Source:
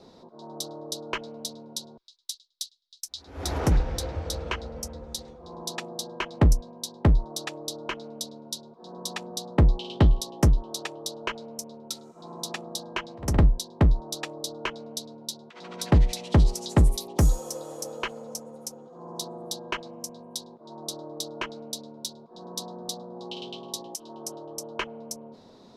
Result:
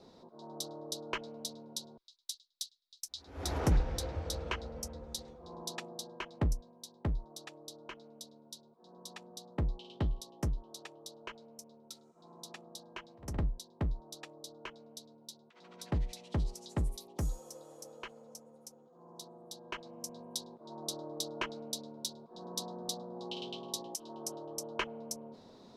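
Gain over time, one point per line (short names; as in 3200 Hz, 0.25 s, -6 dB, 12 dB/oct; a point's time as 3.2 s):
5.53 s -6 dB
6.77 s -14.5 dB
19.48 s -14.5 dB
20.18 s -4 dB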